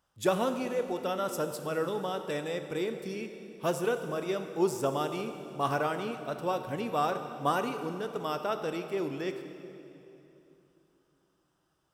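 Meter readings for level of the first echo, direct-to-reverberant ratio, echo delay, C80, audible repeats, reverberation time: none, 7.0 dB, none, 9.0 dB, none, 3.0 s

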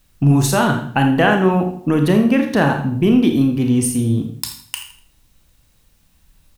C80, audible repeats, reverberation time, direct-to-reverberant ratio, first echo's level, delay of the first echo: 10.0 dB, 1, 0.60 s, 3.5 dB, -13.0 dB, 82 ms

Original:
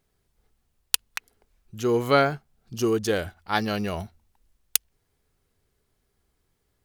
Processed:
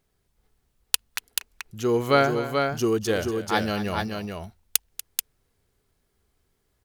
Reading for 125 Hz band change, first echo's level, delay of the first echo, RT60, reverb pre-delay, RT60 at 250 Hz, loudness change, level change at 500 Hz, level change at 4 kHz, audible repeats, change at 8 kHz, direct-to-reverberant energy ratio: +1.5 dB, -14.0 dB, 0.239 s, none, none, none, 0.0 dB, +1.5 dB, +1.5 dB, 2, +1.5 dB, none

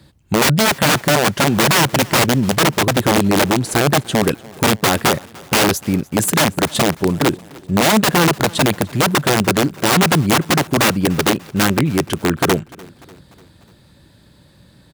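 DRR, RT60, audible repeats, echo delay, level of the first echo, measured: none, none, 3, 0.296 s, -23.0 dB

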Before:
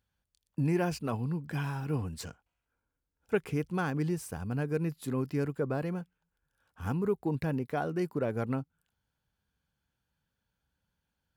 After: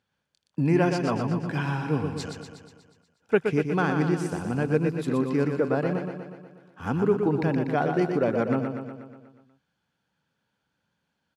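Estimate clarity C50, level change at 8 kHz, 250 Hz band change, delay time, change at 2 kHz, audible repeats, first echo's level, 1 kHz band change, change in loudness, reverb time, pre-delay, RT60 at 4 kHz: none, +2.0 dB, +7.5 dB, 0.121 s, +8.5 dB, 7, -6.0 dB, +8.5 dB, +7.5 dB, none, none, none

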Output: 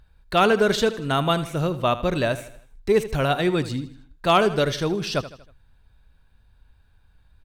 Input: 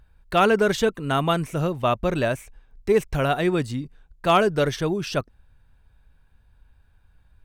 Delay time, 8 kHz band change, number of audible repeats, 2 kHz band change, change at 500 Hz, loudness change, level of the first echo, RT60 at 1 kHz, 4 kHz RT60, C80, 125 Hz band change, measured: 79 ms, +1.0 dB, 4, +0.5 dB, +0.5 dB, +0.5 dB, -14.5 dB, none, none, none, 0.0 dB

